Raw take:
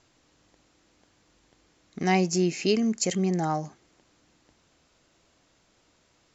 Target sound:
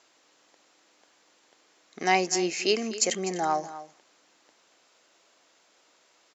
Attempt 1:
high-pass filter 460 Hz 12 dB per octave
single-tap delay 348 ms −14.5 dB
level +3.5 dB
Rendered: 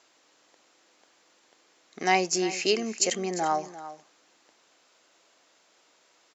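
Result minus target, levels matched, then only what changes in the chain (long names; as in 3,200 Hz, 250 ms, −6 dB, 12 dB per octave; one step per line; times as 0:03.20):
echo 99 ms late
change: single-tap delay 249 ms −14.5 dB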